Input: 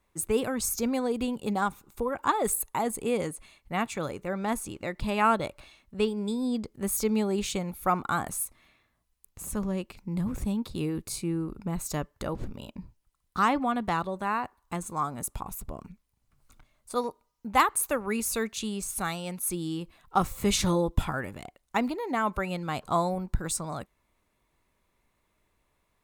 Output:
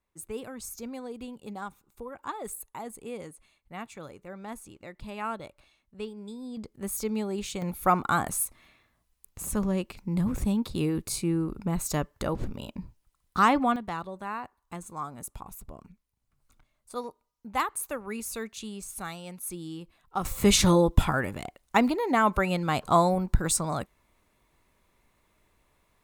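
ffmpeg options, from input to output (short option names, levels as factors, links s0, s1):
-af "asetnsamples=n=441:p=0,asendcmd='6.57 volume volume -4dB;7.62 volume volume 3dB;13.76 volume volume -6dB;20.25 volume volume 5dB',volume=0.299"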